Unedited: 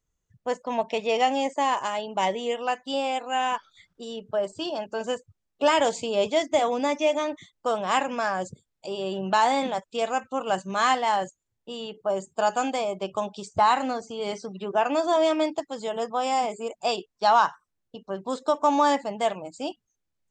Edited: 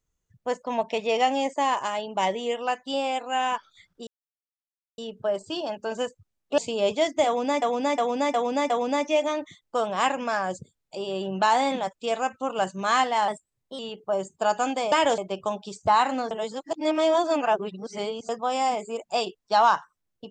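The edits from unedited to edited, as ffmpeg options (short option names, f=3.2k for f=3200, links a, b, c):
-filter_complex "[0:a]asplit=13[a][b][c][d][e][f][g][h][i][j][k][l][m];[a]atrim=end=4.07,asetpts=PTS-STARTPTS,afade=t=out:st=4.066:d=0.004:c=hsin,apad=pad_dur=0.91[n];[b]atrim=start=4.07:end=5.672,asetpts=PTS-STARTPTS,afade=t=in:d=0.004:c=hsin[o];[c]atrim=start=5.928:end=6.972[p];[d]atrim=start=6.608:end=6.972[q];[e]atrim=start=6.608:end=6.972[r];[f]atrim=start=6.608:end=6.972[s];[g]atrim=start=6.608:end=11.194[t];[h]atrim=start=11.19:end=11.76,asetpts=PTS-STARTPTS,asetrate=49392,aresample=44100[u];[i]atrim=start=11.756:end=12.892[v];[j]atrim=start=5.668:end=5.932[w];[k]atrim=start=12.888:end=14.022[x];[l]atrim=start=14.018:end=16.002,asetpts=PTS-STARTPTS,areverse[y];[m]atrim=start=15.998[z];[n][o]concat=n=2:v=0:a=1[aa];[aa][p]acrossfade=d=0.004:c1=hsin:c2=hsin[ab];[ab][q]acrossfade=d=0.004:c1=hsin:c2=hsin[ac];[ac][r]acrossfade=d=0.004:c1=hsin:c2=hsin[ad];[ad][s]acrossfade=d=0.004:c1=hsin:c2=hsin[ae];[ae][t]acrossfade=d=0.004:c1=hsin:c2=hsin[af];[af][u]acrossfade=d=0.004:c1=hsin:c2=hsin[ag];[ag][v]acrossfade=d=0.004:c1=hsin:c2=hsin[ah];[ah][w]acrossfade=d=0.004:c1=hsin:c2=hsin[ai];[ai][x]acrossfade=d=0.004:c1=hsin:c2=hsin[aj];[aj][y]acrossfade=d=0.004:c1=hsin:c2=hsin[ak];[ak][z]acrossfade=d=0.004:c1=hsin:c2=hsin"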